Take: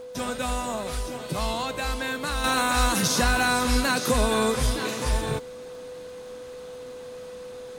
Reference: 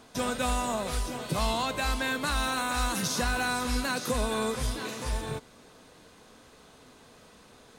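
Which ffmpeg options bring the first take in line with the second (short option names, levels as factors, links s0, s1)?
-af "adeclick=t=4,bandreject=f=500:w=30,asetnsamples=n=441:p=0,asendcmd='2.44 volume volume -6.5dB',volume=1"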